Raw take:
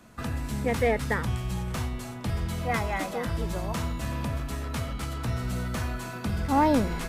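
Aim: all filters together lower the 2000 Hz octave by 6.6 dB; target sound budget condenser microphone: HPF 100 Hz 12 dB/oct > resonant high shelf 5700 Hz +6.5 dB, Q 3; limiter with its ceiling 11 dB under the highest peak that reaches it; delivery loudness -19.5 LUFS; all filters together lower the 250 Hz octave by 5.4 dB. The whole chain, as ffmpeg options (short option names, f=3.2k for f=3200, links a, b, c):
-af "equalizer=f=250:t=o:g=-6.5,equalizer=f=2k:t=o:g=-7,alimiter=level_in=1.5dB:limit=-24dB:level=0:latency=1,volume=-1.5dB,highpass=100,highshelf=f=5.7k:t=q:w=3:g=6.5,volume=16dB"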